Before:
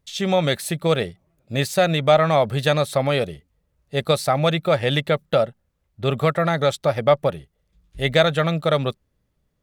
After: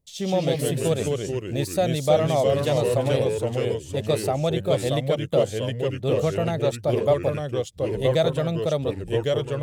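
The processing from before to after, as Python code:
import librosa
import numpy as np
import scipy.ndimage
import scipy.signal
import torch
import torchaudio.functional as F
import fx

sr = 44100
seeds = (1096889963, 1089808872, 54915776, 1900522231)

y = fx.curve_eq(x, sr, hz=(670.0, 1400.0, 7700.0), db=(0, -12, 1))
y = fx.echo_pitch(y, sr, ms=106, semitones=-2, count=3, db_per_echo=-3.0)
y = y * 10.0 ** (-4.0 / 20.0)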